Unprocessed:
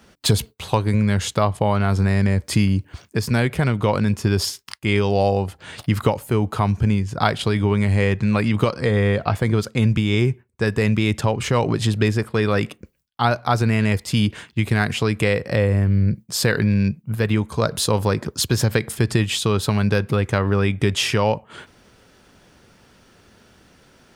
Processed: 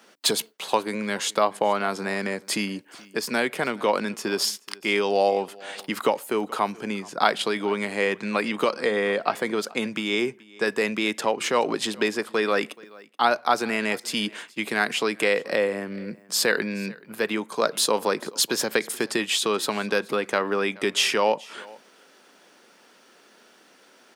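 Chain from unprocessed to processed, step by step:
Bessel high-pass filter 360 Hz, order 6
single-tap delay 428 ms −23 dB

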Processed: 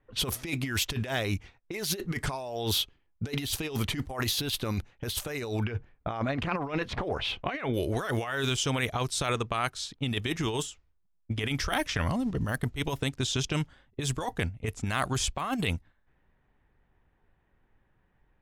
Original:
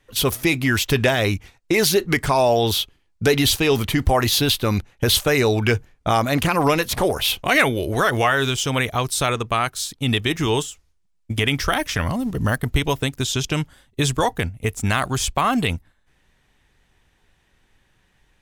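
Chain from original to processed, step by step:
low-pass that shuts in the quiet parts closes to 1,400 Hz, open at −16.5 dBFS
0:05.64–0:07.74: low-pass filter 2,700 Hz 12 dB per octave
compressor whose output falls as the input rises −21 dBFS, ratio −0.5
level −8 dB

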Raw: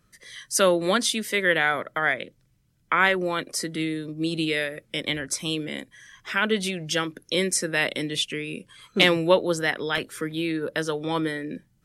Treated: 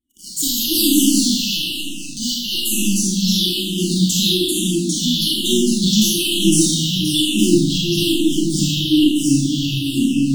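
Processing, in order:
gliding playback speed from 140% → 89%
high-pass filter 98 Hz 6 dB per octave
high-shelf EQ 6,700 Hz −4 dB
leveller curve on the samples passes 5
in parallel at +2 dB: brickwall limiter −11.5 dBFS, peak gain reduction 7.5 dB
on the sum: pitch vibrato 1 Hz 39 cents
brick-wall band-stop 370–2,900 Hz
flanger 0.49 Hz, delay 3.1 ms, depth 8.6 ms, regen +27%
delay with pitch and tempo change per echo 148 ms, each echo −1 semitone, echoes 2
four-comb reverb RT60 0.97 s, combs from 29 ms, DRR −3.5 dB
frequency shifter mixed with the dry sound −1.1 Hz
level −6 dB

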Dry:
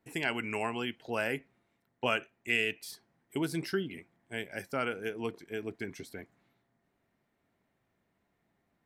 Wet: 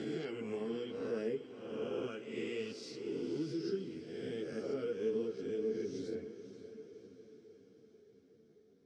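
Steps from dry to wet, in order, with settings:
peak hold with a rise ahead of every peak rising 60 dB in 1.11 s
drawn EQ curve 280 Hz 0 dB, 2,500 Hz −24 dB, 4,000 Hz 0 dB
downward compressor 4 to 1, threshold −45 dBFS, peak gain reduction 13.5 dB
loudspeaker in its box 140–5,100 Hz, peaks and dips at 190 Hz −5 dB, 440 Hz +8 dB, 630 Hz −5 dB, 910 Hz −10 dB, 2,300 Hz +4 dB, 4,200 Hz −10 dB
feedback delay with all-pass diffusion 534 ms, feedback 57%, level −12 dB
convolution reverb RT60 0.95 s, pre-delay 3 ms, DRR 13 dB
string-ensemble chorus
level +9.5 dB

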